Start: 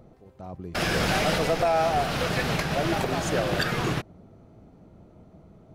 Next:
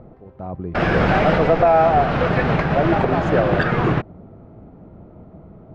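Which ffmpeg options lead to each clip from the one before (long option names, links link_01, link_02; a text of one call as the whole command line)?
ffmpeg -i in.wav -af "lowpass=1700,volume=9dB" out.wav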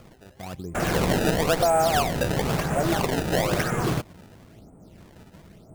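ffmpeg -i in.wav -af "acrusher=samples=23:mix=1:aa=0.000001:lfo=1:lforange=36.8:lforate=1,volume=-6.5dB" out.wav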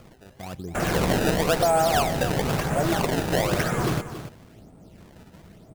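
ffmpeg -i in.wav -af "aecho=1:1:277:0.266" out.wav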